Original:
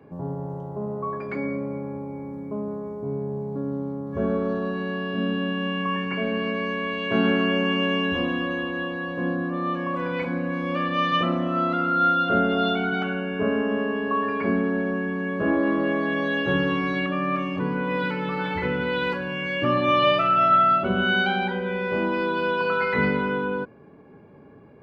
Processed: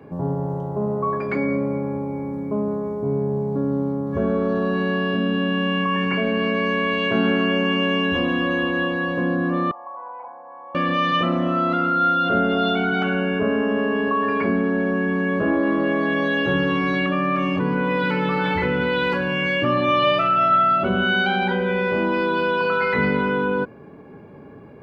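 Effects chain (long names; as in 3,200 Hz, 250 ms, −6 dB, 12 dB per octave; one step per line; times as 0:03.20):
in parallel at −2 dB: compressor whose output falls as the input rises −28 dBFS
0:09.71–0:10.75: on the sum: flat-topped band-pass 840 Hz, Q 3.1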